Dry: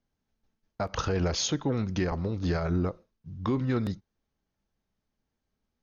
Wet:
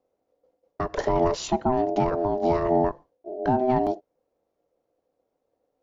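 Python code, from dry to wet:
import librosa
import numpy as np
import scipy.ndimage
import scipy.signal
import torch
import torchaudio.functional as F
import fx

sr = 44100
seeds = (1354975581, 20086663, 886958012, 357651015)

y = fx.tilt_shelf(x, sr, db=6.0, hz=750.0)
y = y * np.sin(2.0 * np.pi * 510.0 * np.arange(len(y)) / sr)
y = F.gain(torch.from_numpy(y), 3.5).numpy()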